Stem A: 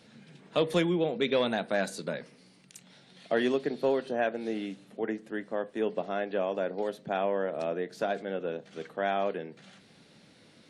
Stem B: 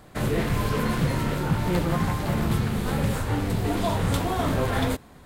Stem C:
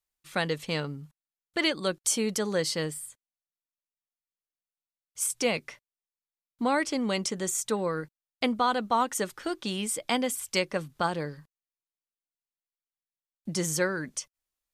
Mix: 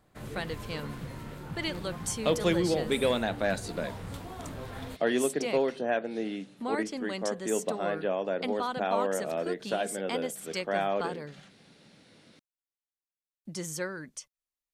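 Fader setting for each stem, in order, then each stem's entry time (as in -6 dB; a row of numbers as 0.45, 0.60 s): 0.0, -16.0, -7.5 dB; 1.70, 0.00, 0.00 s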